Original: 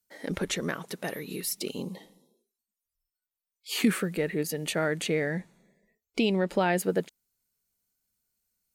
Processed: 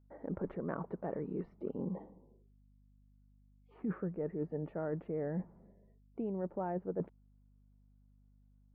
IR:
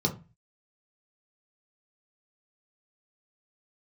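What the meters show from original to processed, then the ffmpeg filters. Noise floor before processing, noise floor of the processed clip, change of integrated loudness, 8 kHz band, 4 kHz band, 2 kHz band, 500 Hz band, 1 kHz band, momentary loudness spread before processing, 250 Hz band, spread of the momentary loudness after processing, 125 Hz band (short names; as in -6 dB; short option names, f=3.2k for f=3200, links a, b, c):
under -85 dBFS, -66 dBFS, -10.5 dB, under -40 dB, under -40 dB, -22.5 dB, -9.0 dB, -10.5 dB, 11 LU, -9.0 dB, 6 LU, -6.5 dB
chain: -af "lowpass=f=1.1k:w=0.5412,lowpass=f=1.1k:w=1.3066,areverse,acompressor=threshold=-36dB:ratio=10,areverse,aeval=exprs='val(0)+0.000501*(sin(2*PI*50*n/s)+sin(2*PI*2*50*n/s)/2+sin(2*PI*3*50*n/s)/3+sin(2*PI*4*50*n/s)/4+sin(2*PI*5*50*n/s)/5)':c=same,volume=2dB"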